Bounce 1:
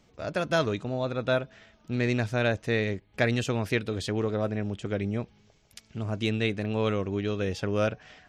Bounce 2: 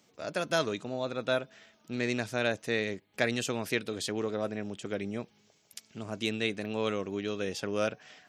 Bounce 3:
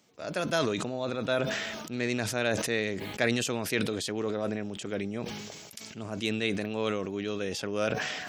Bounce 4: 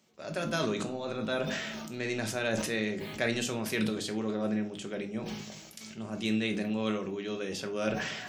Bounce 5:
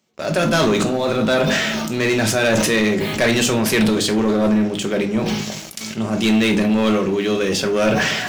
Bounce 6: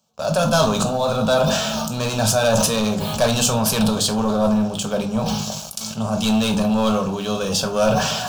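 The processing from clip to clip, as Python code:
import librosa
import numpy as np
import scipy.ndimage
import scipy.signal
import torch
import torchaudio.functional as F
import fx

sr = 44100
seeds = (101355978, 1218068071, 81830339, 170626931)

y1 = scipy.signal.sosfilt(scipy.signal.butter(2, 180.0, 'highpass', fs=sr, output='sos'), x)
y1 = fx.high_shelf(y1, sr, hz=5300.0, db=11.0)
y1 = y1 * librosa.db_to_amplitude(-3.5)
y2 = fx.sustainer(y1, sr, db_per_s=31.0)
y3 = fx.room_shoebox(y2, sr, seeds[0], volume_m3=260.0, walls='furnished', distance_m=1.1)
y3 = y3 * librosa.db_to_amplitude(-4.0)
y4 = fx.leveller(y3, sr, passes=3)
y4 = y4 * librosa.db_to_amplitude(6.0)
y5 = fx.fixed_phaser(y4, sr, hz=830.0, stages=4)
y5 = y5 * librosa.db_to_amplitude(3.5)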